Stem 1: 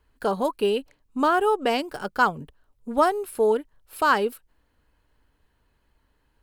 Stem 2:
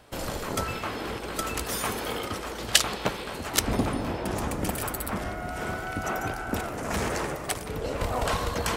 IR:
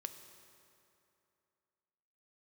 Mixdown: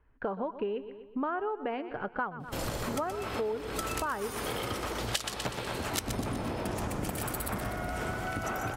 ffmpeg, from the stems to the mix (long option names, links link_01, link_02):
-filter_complex "[0:a]lowpass=frequency=2300:width=0.5412,lowpass=frequency=2300:width=1.3066,volume=-1dB,asplit=3[link_01][link_02][link_03];[link_02]volume=-16.5dB[link_04];[1:a]adelay=2400,volume=2.5dB,asplit=2[link_05][link_06];[link_06]volume=-8dB[link_07];[link_03]apad=whole_len=492568[link_08];[link_05][link_08]sidechaincompress=threshold=-29dB:ratio=8:attack=42:release=408[link_09];[link_04][link_07]amix=inputs=2:normalize=0,aecho=0:1:123|246|369|492|615|738:1|0.44|0.194|0.0852|0.0375|0.0165[link_10];[link_01][link_09][link_10]amix=inputs=3:normalize=0,equalizer=frequency=120:width=6.2:gain=7,acompressor=threshold=-31dB:ratio=5"